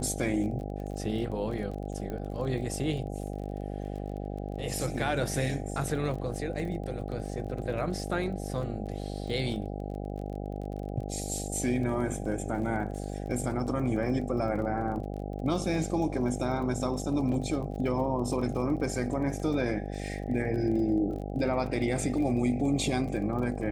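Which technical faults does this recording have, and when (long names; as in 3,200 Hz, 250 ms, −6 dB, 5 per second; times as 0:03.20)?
mains buzz 50 Hz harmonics 16 −36 dBFS
surface crackle 27 per second −38 dBFS
0:02.10: click −25 dBFS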